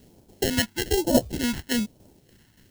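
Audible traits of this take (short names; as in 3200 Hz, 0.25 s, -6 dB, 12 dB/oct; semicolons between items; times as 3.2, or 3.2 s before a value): aliases and images of a low sample rate 1200 Hz, jitter 0%; phasing stages 2, 1.1 Hz, lowest notch 520–1900 Hz; a quantiser's noise floor 12-bit, dither triangular; tremolo saw down 3.5 Hz, depth 55%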